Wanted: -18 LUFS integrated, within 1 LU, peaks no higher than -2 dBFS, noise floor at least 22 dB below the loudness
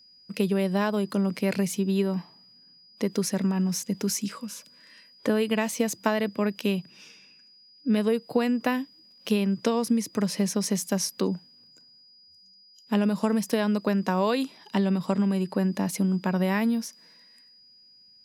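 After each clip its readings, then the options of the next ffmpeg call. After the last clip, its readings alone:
steady tone 4.9 kHz; tone level -53 dBFS; loudness -26.5 LUFS; peak level -7.5 dBFS; loudness target -18.0 LUFS
-> -af "bandreject=f=4900:w=30"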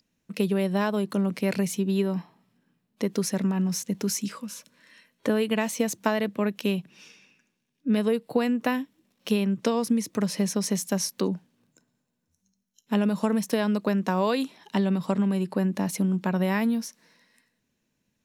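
steady tone not found; loudness -26.5 LUFS; peak level -7.5 dBFS; loudness target -18.0 LUFS
-> -af "volume=2.66,alimiter=limit=0.794:level=0:latency=1"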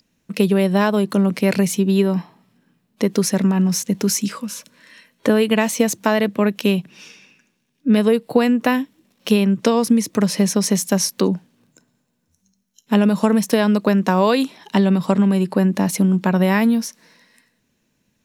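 loudness -18.0 LUFS; peak level -2.0 dBFS; noise floor -69 dBFS

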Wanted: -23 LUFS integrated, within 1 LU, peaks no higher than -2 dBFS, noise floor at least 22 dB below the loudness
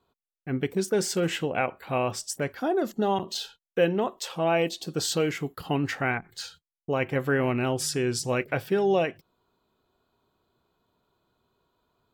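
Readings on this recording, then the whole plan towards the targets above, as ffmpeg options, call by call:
loudness -27.5 LUFS; peak level -11.0 dBFS; loudness target -23.0 LUFS
-> -af "volume=1.68"

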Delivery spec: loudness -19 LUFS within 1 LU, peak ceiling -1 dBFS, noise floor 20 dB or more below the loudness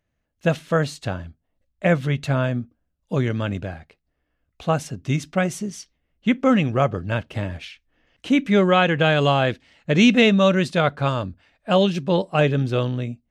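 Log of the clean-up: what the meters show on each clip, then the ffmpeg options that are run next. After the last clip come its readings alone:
loudness -21.0 LUFS; peak level -4.5 dBFS; loudness target -19.0 LUFS
-> -af "volume=1.26"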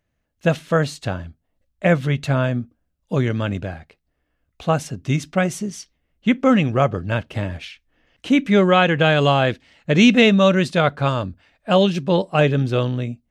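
loudness -19.0 LUFS; peak level -2.5 dBFS; noise floor -73 dBFS

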